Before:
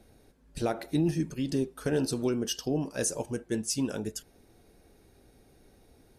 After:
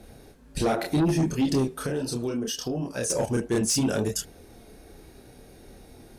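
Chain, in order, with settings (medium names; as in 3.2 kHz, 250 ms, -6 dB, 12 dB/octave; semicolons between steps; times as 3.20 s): chorus voices 2, 0.7 Hz, delay 29 ms, depth 5 ms; in parallel at -3 dB: peak limiter -29.5 dBFS, peak gain reduction 10.5 dB; 1.68–3.10 s: on the sum: compression 2.5:1, threshold -39 dBFS, peak gain reduction 10.5 dB; Chebyshev shaper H 5 -14 dB, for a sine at -17 dBFS; trim +3 dB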